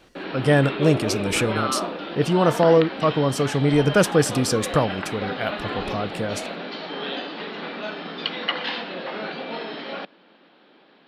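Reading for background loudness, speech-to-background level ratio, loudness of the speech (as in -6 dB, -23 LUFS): -29.5 LUFS, 7.5 dB, -22.0 LUFS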